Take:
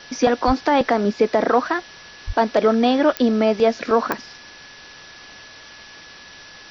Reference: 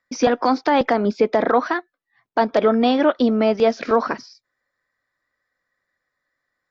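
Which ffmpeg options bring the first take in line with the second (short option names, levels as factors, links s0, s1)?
-filter_complex "[0:a]adeclick=t=4,bandreject=f=1700:w=30,asplit=3[s0][s1][s2];[s0]afade=t=out:st=0.46:d=0.02[s3];[s1]highpass=f=140:w=0.5412,highpass=f=140:w=1.3066,afade=t=in:st=0.46:d=0.02,afade=t=out:st=0.58:d=0.02[s4];[s2]afade=t=in:st=0.58:d=0.02[s5];[s3][s4][s5]amix=inputs=3:normalize=0,asplit=3[s6][s7][s8];[s6]afade=t=out:st=2.26:d=0.02[s9];[s7]highpass=f=140:w=0.5412,highpass=f=140:w=1.3066,afade=t=in:st=2.26:d=0.02,afade=t=out:st=2.38:d=0.02[s10];[s8]afade=t=in:st=2.38:d=0.02[s11];[s9][s10][s11]amix=inputs=3:normalize=0,afwtdn=0.013"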